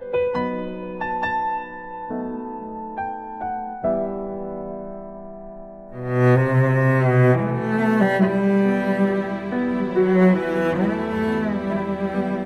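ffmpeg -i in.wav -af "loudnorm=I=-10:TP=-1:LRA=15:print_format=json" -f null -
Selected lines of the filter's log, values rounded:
"input_i" : "-21.3",
"input_tp" : "-4.8",
"input_lra" : "8.8",
"input_thresh" : "-31.7",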